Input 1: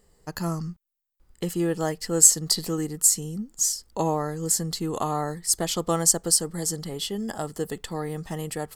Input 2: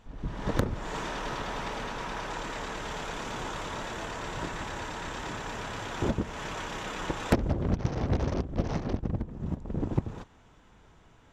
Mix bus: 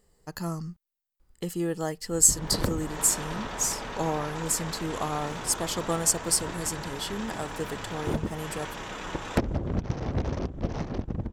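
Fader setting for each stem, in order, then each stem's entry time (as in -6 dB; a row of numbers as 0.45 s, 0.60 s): -4.0 dB, -1.0 dB; 0.00 s, 2.05 s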